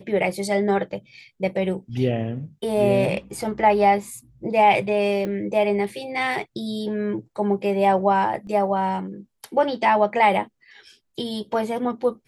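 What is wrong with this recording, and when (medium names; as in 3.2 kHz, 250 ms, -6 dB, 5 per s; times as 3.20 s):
5.25 s: pop -17 dBFS
8.47 s: dropout 2.3 ms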